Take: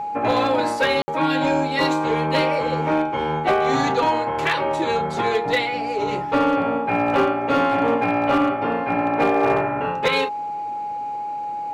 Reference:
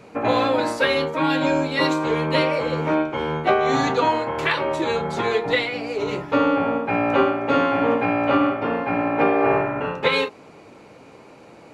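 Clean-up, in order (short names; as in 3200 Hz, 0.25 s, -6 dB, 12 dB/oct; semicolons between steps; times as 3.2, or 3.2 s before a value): clip repair -12 dBFS; notch 830 Hz, Q 30; room tone fill 1.02–1.08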